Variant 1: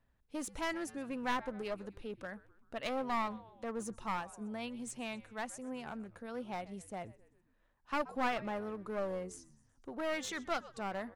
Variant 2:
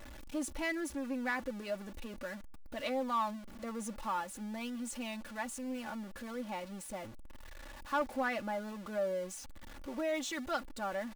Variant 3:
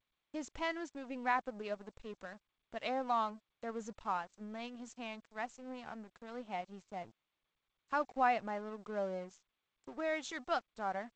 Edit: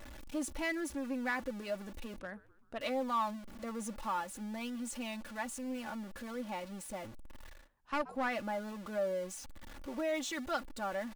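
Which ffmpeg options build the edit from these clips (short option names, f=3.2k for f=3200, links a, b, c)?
-filter_complex "[0:a]asplit=2[a][b];[1:a]asplit=3[c][d][e];[c]atrim=end=2.202[f];[a]atrim=start=2.198:end=2.812[g];[d]atrim=start=2.808:end=7.69[h];[b]atrim=start=7.45:end=8.36[i];[e]atrim=start=8.12[j];[f][g]acrossfade=d=0.004:c1=hsin:c2=hsin[k];[k][h]acrossfade=d=0.004:c1=hsin:c2=hsin[l];[l][i]acrossfade=d=0.24:c1=tri:c2=tri[m];[m][j]acrossfade=d=0.24:c1=tri:c2=tri"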